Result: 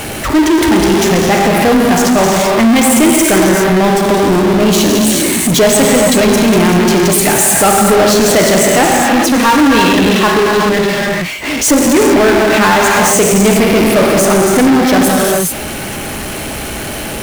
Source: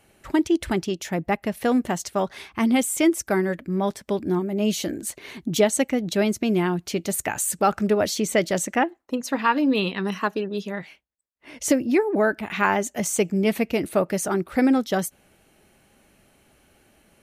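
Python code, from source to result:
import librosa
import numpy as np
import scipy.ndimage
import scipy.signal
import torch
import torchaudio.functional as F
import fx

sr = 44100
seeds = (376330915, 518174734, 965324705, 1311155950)

y = fx.rev_gated(x, sr, seeds[0], gate_ms=450, shape='flat', drr_db=-0.5)
y = fx.power_curve(y, sr, exponent=0.35)
y = y * 10.0 ** (2.0 / 20.0)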